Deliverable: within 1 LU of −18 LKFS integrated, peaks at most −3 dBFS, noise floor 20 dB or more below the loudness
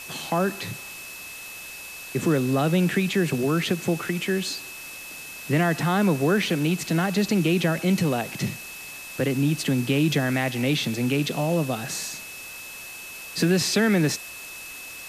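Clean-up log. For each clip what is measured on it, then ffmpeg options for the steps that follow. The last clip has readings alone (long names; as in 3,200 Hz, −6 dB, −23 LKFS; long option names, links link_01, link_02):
interfering tone 2,600 Hz; level of the tone −39 dBFS; background noise floor −39 dBFS; target noise floor −44 dBFS; integrated loudness −24.0 LKFS; sample peak −9.5 dBFS; target loudness −18.0 LKFS
→ -af "bandreject=frequency=2600:width=30"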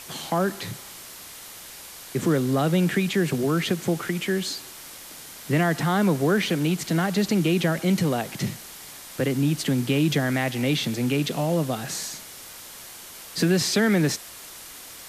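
interfering tone none found; background noise floor −42 dBFS; target noise floor −44 dBFS
→ -af "afftdn=noise_reduction=6:noise_floor=-42"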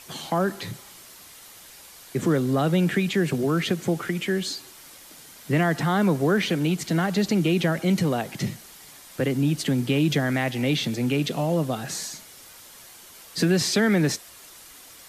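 background noise floor −47 dBFS; integrated loudness −24.0 LKFS; sample peak −10.0 dBFS; target loudness −18.0 LKFS
→ -af "volume=6dB"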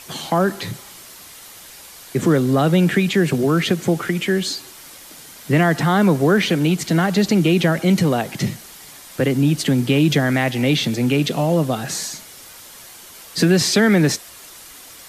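integrated loudness −18.0 LKFS; sample peak −4.0 dBFS; background noise floor −41 dBFS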